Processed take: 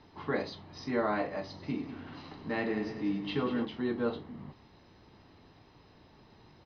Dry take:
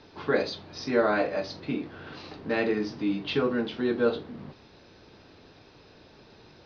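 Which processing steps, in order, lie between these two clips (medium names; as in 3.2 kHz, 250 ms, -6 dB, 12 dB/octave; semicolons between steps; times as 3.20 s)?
treble shelf 3.8 kHz -9 dB; comb 1 ms, depth 40%; 1.43–3.65 s: multi-head delay 96 ms, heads first and second, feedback 53%, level -13 dB; trim -4.5 dB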